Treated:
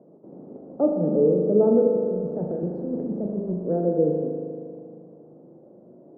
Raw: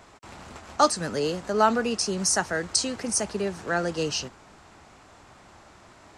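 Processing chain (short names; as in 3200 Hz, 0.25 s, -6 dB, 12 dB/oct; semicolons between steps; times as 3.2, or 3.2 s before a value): Chebyshev band-pass 160–540 Hz, order 3; 1.87–3.54 negative-ratio compressor -36 dBFS, ratio -1; spring tank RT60 2.3 s, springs 39 ms, chirp 80 ms, DRR 1 dB; gain +6.5 dB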